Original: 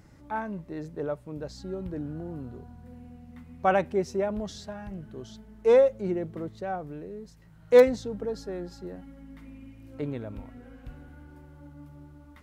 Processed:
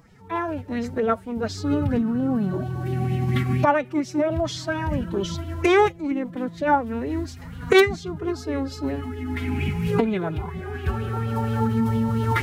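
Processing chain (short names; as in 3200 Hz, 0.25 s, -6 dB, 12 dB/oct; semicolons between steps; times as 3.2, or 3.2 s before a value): recorder AGC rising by 12 dB/s; formant-preserving pitch shift +7.5 st; LFO bell 4.3 Hz 890–3300 Hz +10 dB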